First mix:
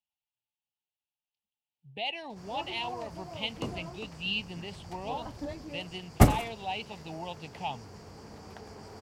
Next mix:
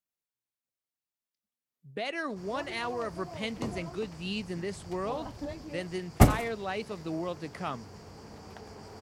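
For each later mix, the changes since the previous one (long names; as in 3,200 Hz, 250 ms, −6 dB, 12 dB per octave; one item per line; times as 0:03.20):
speech: remove drawn EQ curve 120 Hz 0 dB, 310 Hz −11 dB, 580 Hz −8 dB, 870 Hz +9 dB, 1,300 Hz −28 dB, 2,800 Hz +9 dB, 6,200 Hz −12 dB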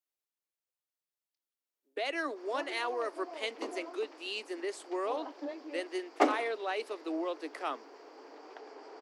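background: add high-frequency loss of the air 160 metres
master: add Butterworth high-pass 280 Hz 72 dB per octave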